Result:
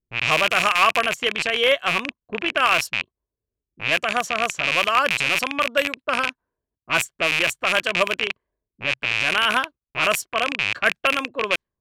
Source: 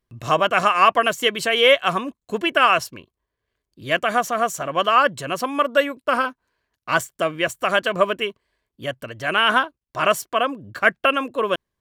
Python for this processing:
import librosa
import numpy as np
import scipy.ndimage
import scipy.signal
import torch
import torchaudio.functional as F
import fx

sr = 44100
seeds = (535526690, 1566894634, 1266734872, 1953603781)

y = fx.rattle_buzz(x, sr, strikes_db=-44.0, level_db=-6.0)
y = fx.env_lowpass(y, sr, base_hz=360.0, full_db=-13.5)
y = fx.high_shelf(y, sr, hz=4000.0, db=fx.steps((0.0, 10.5), (1.01, 3.0), (2.62, 9.0)))
y = y * librosa.db_to_amplitude(-4.5)